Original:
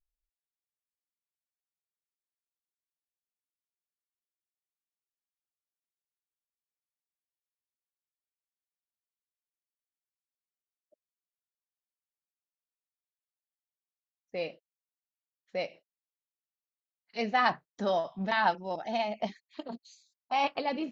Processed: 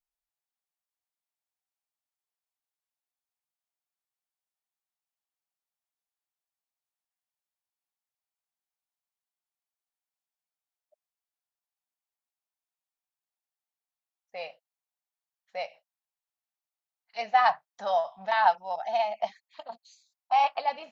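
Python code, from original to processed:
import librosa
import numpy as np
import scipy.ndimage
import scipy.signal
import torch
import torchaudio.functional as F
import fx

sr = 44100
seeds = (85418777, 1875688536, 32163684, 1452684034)

y = fx.low_shelf_res(x, sr, hz=500.0, db=-13.5, q=3.0)
y = F.gain(torch.from_numpy(y), -1.0).numpy()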